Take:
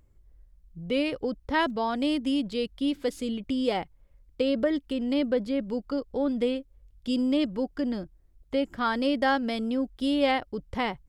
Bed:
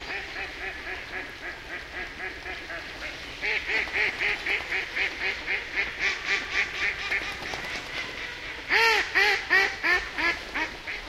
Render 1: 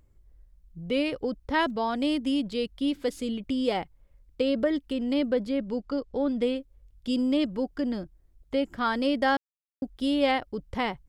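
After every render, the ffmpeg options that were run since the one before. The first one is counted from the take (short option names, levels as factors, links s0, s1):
-filter_complex "[0:a]asettb=1/sr,asplit=3[s0][s1][s2];[s0]atrim=end=5.594[s3];[s1]atrim=start=5.59:end=6.42,asetpts=PTS-STARTPTS,afade=t=in:d=0.004:c=qsin,afade=t=out:st=0.826:d=0.004:c=qsin,lowpass=7400[s4];[s2]atrim=start=6.416[s5];[s3][s4]acrossfade=d=0.004:c1=hsin:c2=qsin[s6];[s6][s5]acrossfade=d=0.004:c1=qsin:c2=hsin,asplit=3[s7][s8][s9];[s7]atrim=end=9.37,asetpts=PTS-STARTPTS,afade=t=out:st=9.366:d=0.004:c=hsin[s10];[s8]atrim=start=9.37:end=9.82,asetpts=PTS-STARTPTS,volume=0[s11];[s9]atrim=start=9.82,asetpts=PTS-STARTPTS,afade=t=in:d=0.004:c=hsin[s12];[s10][s11][s12]concat=n=3:v=0:a=1"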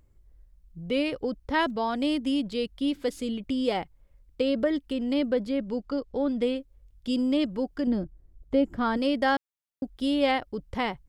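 -filter_complex "[0:a]asettb=1/sr,asplit=3[s0][s1][s2];[s0]atrim=end=7.874[s3];[s1]atrim=start=7.87:end=8.97,asetpts=PTS-STARTPTS,afade=t=in:d=0.004:c=qsin,afade=t=out:st=1.096:d=0.004:c=qsin,tiltshelf=f=870:g=6[s4];[s2]atrim=start=8.966[s5];[s3][s4]acrossfade=d=0.004:c1=hsin:c2=qsin[s6];[s6][s5]acrossfade=d=0.004:c1=qsin:c2=hsin"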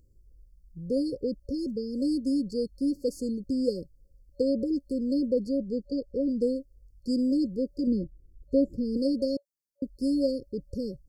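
-af "afftfilt=real='re*(1-between(b*sr/4096,560,4300))':imag='im*(1-between(b*sr/4096,560,4300))':win_size=4096:overlap=0.75"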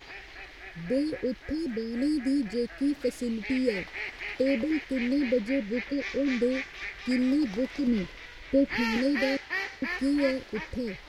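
-filter_complex "[1:a]volume=0.299[s0];[0:a][s0]amix=inputs=2:normalize=0"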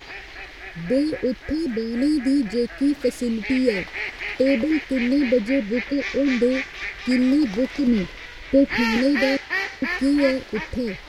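-af "volume=2.24"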